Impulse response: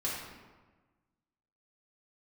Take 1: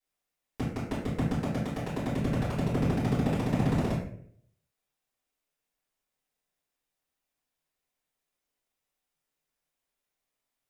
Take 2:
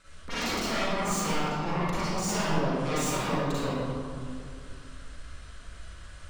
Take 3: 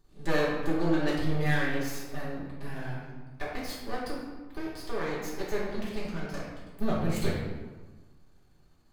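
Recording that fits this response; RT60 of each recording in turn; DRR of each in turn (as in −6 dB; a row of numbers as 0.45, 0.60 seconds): 3; 0.60, 2.3, 1.3 seconds; −11.5, −11.5, −7.5 decibels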